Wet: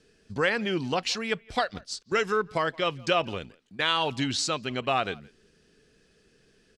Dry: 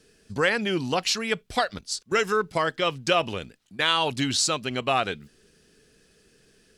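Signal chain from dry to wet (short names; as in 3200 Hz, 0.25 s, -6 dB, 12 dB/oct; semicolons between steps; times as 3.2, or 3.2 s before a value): air absorption 59 m; speakerphone echo 0.17 s, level -24 dB; gain -2 dB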